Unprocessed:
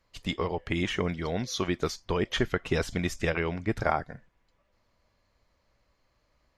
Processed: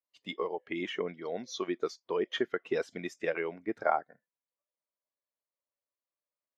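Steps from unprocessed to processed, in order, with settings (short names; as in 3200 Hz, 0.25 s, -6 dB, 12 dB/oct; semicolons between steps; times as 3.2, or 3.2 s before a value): HPF 300 Hz 12 dB/oct; spectral expander 1.5:1; gain -2 dB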